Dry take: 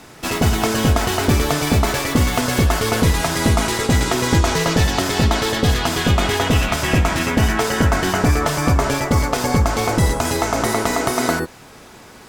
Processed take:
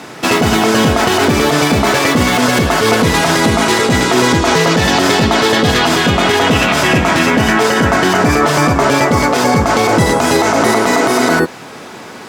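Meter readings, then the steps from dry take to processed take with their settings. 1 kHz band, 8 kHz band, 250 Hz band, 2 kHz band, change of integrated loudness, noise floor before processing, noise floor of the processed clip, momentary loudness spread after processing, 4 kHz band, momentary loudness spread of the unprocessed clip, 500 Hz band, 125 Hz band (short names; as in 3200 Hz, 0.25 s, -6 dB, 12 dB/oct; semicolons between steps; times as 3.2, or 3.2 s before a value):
+8.5 dB, +4.5 dB, +7.0 dB, +9.0 dB, +6.5 dB, -42 dBFS, -31 dBFS, 1 LU, +7.5 dB, 2 LU, +8.5 dB, +1.0 dB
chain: HPF 160 Hz 12 dB/oct; high shelf 7400 Hz -10 dB; maximiser +13 dB; gain -1 dB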